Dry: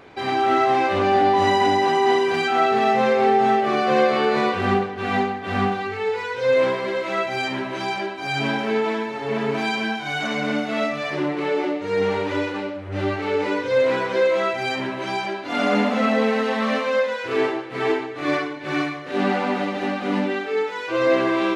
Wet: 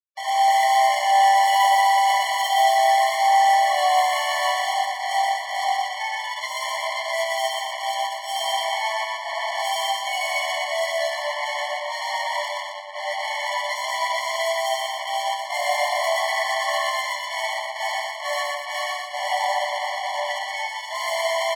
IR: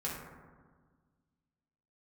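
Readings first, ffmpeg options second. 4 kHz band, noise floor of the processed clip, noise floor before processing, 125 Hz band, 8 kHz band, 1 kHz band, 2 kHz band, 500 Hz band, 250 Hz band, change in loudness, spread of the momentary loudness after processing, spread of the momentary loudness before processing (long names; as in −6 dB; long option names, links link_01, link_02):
+5.0 dB, −32 dBFS, −31 dBFS, below −40 dB, can't be measured, +3.0 dB, +0.5 dB, −7.0 dB, below −40 dB, −0.5 dB, 10 LU, 8 LU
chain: -filter_complex "[0:a]asoftclip=type=tanh:threshold=-14dB,acrusher=bits=3:mix=0:aa=0.5,asplit=2[link_01][link_02];[link_02]aecho=0:1:122.4|239.1:0.794|0.447[link_03];[link_01][link_03]amix=inputs=2:normalize=0,afftfilt=real='re*eq(mod(floor(b*sr/1024/580),2),1)':imag='im*eq(mod(floor(b*sr/1024/580),2),1)':win_size=1024:overlap=0.75,volume=2dB"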